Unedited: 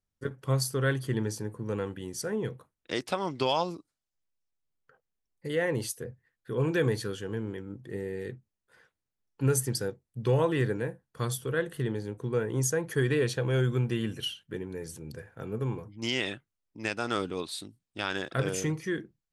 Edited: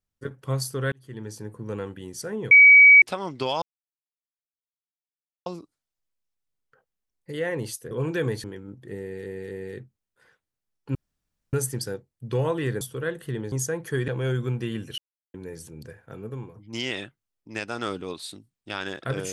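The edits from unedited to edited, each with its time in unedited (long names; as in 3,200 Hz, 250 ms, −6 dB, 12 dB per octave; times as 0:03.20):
0:00.92–0:01.55: fade in
0:02.51–0:03.02: beep over 2,270 Hz −8 dBFS
0:03.62: splice in silence 1.84 s
0:06.07–0:06.51: remove
0:07.04–0:07.46: remove
0:08.03–0:08.28: repeat, 3 plays
0:09.47: splice in room tone 0.58 s
0:10.75–0:11.32: remove
0:12.03–0:12.56: remove
0:13.12–0:13.37: remove
0:14.27–0:14.63: silence
0:15.28–0:15.84: fade out, to −7.5 dB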